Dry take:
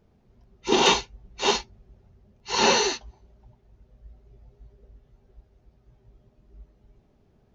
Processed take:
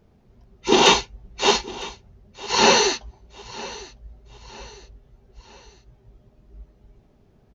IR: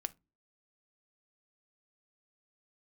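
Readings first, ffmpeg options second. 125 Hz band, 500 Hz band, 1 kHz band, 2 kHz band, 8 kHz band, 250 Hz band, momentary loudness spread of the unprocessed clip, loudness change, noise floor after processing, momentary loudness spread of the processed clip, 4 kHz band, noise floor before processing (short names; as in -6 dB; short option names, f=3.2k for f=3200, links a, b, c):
+4.5 dB, +4.5 dB, +4.5 dB, +4.5 dB, n/a, +4.5 dB, 10 LU, +4.5 dB, -58 dBFS, 20 LU, +4.5 dB, -63 dBFS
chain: -af "aecho=1:1:955|1910|2865:0.112|0.0482|0.0207,volume=4.5dB"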